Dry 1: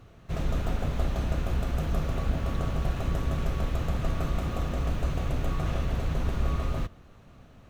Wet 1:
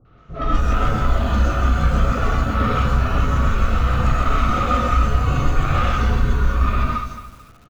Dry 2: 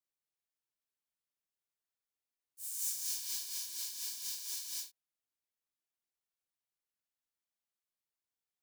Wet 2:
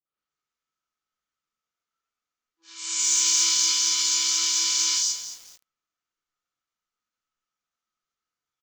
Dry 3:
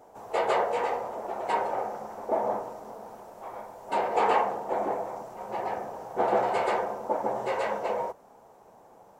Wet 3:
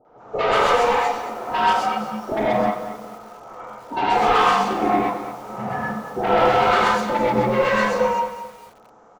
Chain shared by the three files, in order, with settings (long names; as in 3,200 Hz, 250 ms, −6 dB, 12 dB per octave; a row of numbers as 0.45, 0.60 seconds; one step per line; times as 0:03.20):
noise reduction from a noise print of the clip's start 16 dB
Butterworth low-pass 7,300 Hz 72 dB per octave
parametric band 1,300 Hz +15 dB 0.24 octaves
downward compressor 4 to 1, threshold −27 dBFS
soft clipping −32 dBFS
three-band delay without the direct sound lows, mids, highs 50/180 ms, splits 790/4,500 Hz
reverb whose tail is shaped and stops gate 150 ms rising, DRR −4.5 dB
feedback echo at a low word length 219 ms, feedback 35%, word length 9 bits, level −11 dB
loudness normalisation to −20 LKFS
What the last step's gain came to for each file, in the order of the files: +13.5, +16.5, +14.5 decibels